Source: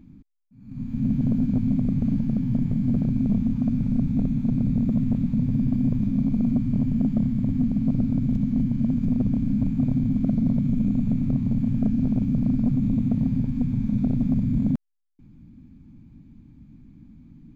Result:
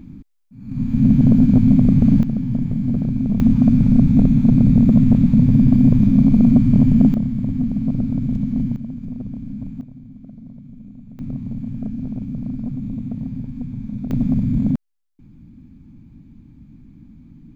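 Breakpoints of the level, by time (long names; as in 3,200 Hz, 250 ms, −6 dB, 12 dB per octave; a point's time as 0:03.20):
+10 dB
from 0:02.23 +2.5 dB
from 0:03.40 +10 dB
from 0:07.14 +2 dB
from 0:08.76 −7 dB
from 0:09.81 −17 dB
from 0:11.19 −4.5 dB
from 0:14.11 +4 dB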